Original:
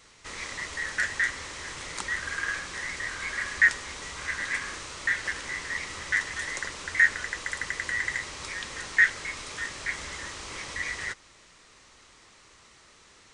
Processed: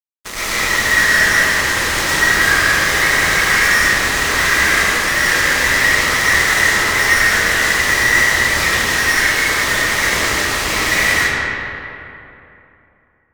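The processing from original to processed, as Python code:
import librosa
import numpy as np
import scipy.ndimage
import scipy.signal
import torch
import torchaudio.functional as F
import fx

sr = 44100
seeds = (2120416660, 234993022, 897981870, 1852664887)

y = fx.fuzz(x, sr, gain_db=42.0, gate_db=-38.0)
y = fx.rev_freeverb(y, sr, rt60_s=3.0, hf_ratio=0.55, predelay_ms=70, drr_db=-10.0)
y = F.gain(torch.from_numpy(y), -5.5).numpy()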